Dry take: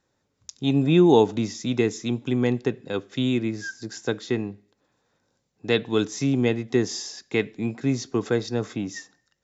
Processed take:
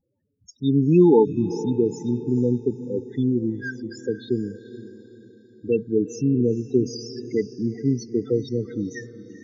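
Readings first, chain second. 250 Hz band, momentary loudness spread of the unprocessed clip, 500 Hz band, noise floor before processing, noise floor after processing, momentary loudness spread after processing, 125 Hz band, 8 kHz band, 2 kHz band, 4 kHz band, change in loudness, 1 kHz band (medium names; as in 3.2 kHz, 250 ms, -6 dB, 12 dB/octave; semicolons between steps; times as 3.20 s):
+2.0 dB, 13 LU, +1.5 dB, -74 dBFS, -65 dBFS, 14 LU, +1.5 dB, no reading, -7.0 dB, -10.5 dB, +1.5 dB, -4.0 dB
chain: loudest bins only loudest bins 8; on a send: echo that smears into a reverb 455 ms, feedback 43%, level -14 dB; on the sum: trim +2 dB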